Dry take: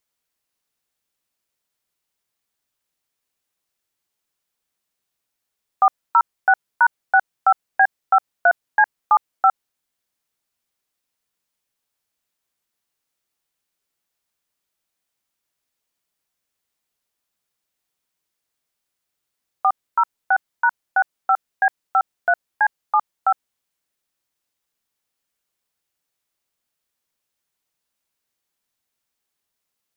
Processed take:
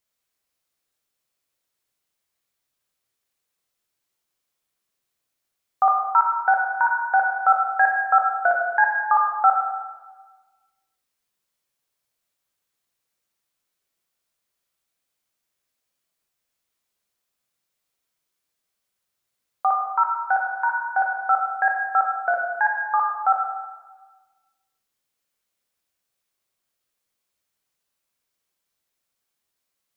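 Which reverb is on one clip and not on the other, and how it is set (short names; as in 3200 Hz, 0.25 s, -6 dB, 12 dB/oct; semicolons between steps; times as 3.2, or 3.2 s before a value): plate-style reverb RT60 1.3 s, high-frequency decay 0.85×, DRR -0.5 dB; gain -3 dB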